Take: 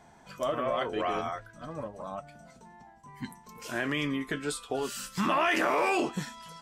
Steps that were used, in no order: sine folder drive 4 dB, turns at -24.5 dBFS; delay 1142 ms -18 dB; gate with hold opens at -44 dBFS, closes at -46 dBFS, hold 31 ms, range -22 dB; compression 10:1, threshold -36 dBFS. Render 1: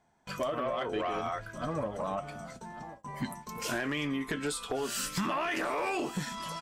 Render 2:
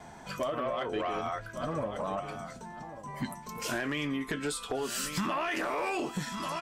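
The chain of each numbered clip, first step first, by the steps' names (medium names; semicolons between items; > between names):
compression > delay > gate with hold > sine folder; delay > compression > sine folder > gate with hold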